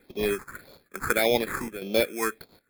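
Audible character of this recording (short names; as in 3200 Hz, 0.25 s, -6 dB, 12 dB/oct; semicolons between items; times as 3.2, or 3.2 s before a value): aliases and images of a low sample rate 2900 Hz, jitter 0%; phasing stages 4, 1.7 Hz, lowest notch 580–1500 Hz; chopped level 1.1 Hz, depth 65%, duty 85%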